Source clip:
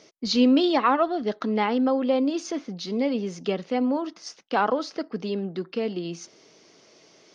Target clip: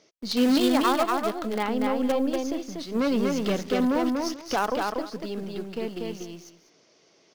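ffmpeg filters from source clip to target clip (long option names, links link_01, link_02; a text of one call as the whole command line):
ffmpeg -i in.wav -filter_complex "[0:a]asplit=2[link_01][link_02];[link_02]acrusher=bits=4:dc=4:mix=0:aa=0.000001,volume=-3.5dB[link_03];[link_01][link_03]amix=inputs=2:normalize=0,asplit=3[link_04][link_05][link_06];[link_04]afade=type=out:start_time=2.94:duration=0.02[link_07];[link_05]aeval=exprs='0.398*(cos(1*acos(clip(val(0)/0.398,-1,1)))-cos(1*PI/2))+0.126*(cos(5*acos(clip(val(0)/0.398,-1,1)))-cos(5*PI/2))':channel_layout=same,afade=type=in:start_time=2.94:duration=0.02,afade=type=out:start_time=4.55:duration=0.02[link_08];[link_06]afade=type=in:start_time=4.55:duration=0.02[link_09];[link_07][link_08][link_09]amix=inputs=3:normalize=0,aecho=1:1:240|437:0.708|0.126,volume=-7.5dB" out.wav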